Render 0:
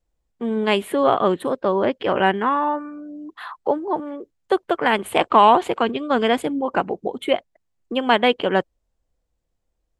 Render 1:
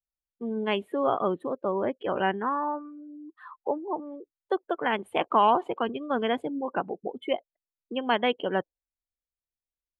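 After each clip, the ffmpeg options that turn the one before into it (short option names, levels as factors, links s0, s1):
-af "afftdn=nr=19:nf=-28,volume=0.398"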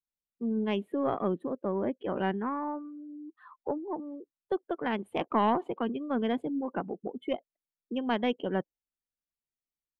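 -af "aeval=exprs='0.316*(cos(1*acos(clip(val(0)/0.316,-1,1)))-cos(1*PI/2))+0.0447*(cos(2*acos(clip(val(0)/0.316,-1,1)))-cos(2*PI/2))':c=same,equalizer=f=210:t=o:w=1.8:g=10.5,volume=0.398"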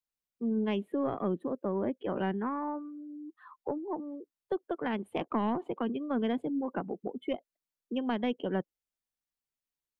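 -filter_complex "[0:a]acrossover=split=330[s0][s1];[s1]acompressor=threshold=0.0282:ratio=6[s2];[s0][s2]amix=inputs=2:normalize=0"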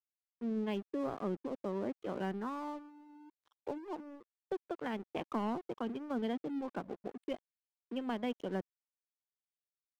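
-af "aeval=exprs='sgn(val(0))*max(abs(val(0))-0.00501,0)':c=same,volume=0.596"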